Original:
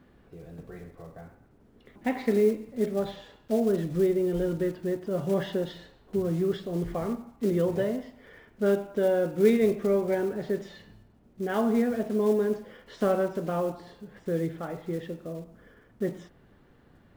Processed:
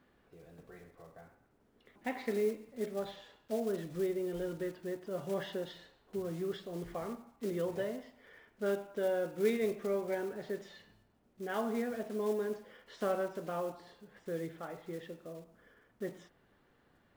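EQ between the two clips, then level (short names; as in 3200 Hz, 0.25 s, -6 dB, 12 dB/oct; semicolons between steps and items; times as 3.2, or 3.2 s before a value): low shelf 360 Hz -10 dB; -5.0 dB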